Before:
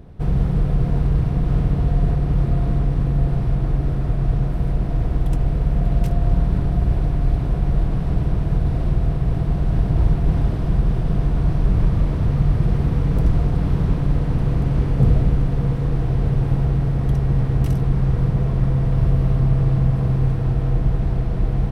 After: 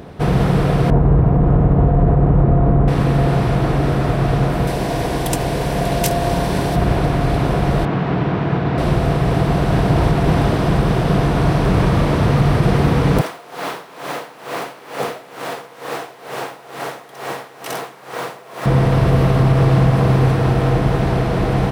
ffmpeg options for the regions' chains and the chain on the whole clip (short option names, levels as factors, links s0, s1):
-filter_complex "[0:a]asettb=1/sr,asplit=3[s0][s1][s2];[s0]atrim=end=0.904[s3];[s1]atrim=start=0.9:end=2.88,asetpts=PTS-STARTPTS,afade=t=in:d=0.004:c=qsin,afade=t=out:st=1.976:d=0.004:c=qsin,lowpass=1000,lowshelf=f=90:g=9.5[s4];[s2]atrim=start=2.876[s5];[s3][s4]acrossfade=d=0.004:c1=hsin:c2=qsin[s6];[s6][s5]acrossfade=d=0.004:c1=qsin:c2=hsin,asettb=1/sr,asplit=3[s7][s8][s9];[s7]atrim=end=4.674[s10];[s8]atrim=start=4.67:end=6.76,asetpts=PTS-STARTPTS,afade=t=in:d=0.004:c=qsin,afade=t=out:st=2.086:d=0.004:c=qsin,bass=f=250:g=-5,treble=f=4000:g=8,bandreject=f=1300:w=7.6[s11];[s9]atrim=start=6.756[s12];[s10][s11]acrossfade=d=0.004:c1=hsin:c2=qsin[s13];[s13][s12]acrossfade=d=0.004:c1=qsin:c2=hsin,asettb=1/sr,asplit=3[s14][s15][s16];[s14]atrim=end=7.854[s17];[s15]atrim=start=7.85:end=8.78,asetpts=PTS-STARTPTS,afade=t=in:d=0.004:c=qsin,afade=t=out:st=0.926:d=0.004:c=qsin,highpass=120,lowpass=2900,equalizer=f=570:w=2.2:g=-4[s18];[s16]atrim=start=8.776[s19];[s17][s18]acrossfade=d=0.004:c1=hsin:c2=qsin[s20];[s20][s19]acrossfade=d=0.004:c1=qsin:c2=hsin,asettb=1/sr,asplit=3[s21][s22][s23];[s21]atrim=end=13.214[s24];[s22]atrim=start=13.21:end=18.66,asetpts=PTS-STARTPTS,afade=t=in:d=0.004:c=qsin,afade=t=out:st=5.446:d=0.004:c=qsin,highpass=600,acrusher=bits=7:mix=0:aa=0.5,aeval=exprs='val(0)*pow(10,-18*(0.5-0.5*cos(2*PI*2.2*n/s))/20)':c=same[s25];[s23]atrim=start=18.656[s26];[s24][s25]acrossfade=d=0.004:c1=hsin:c2=qsin[s27];[s27][s26]acrossfade=d=0.004:c1=qsin:c2=hsin,highpass=f=490:p=1,alimiter=level_in=10:limit=0.891:release=50:level=0:latency=1,volume=0.668"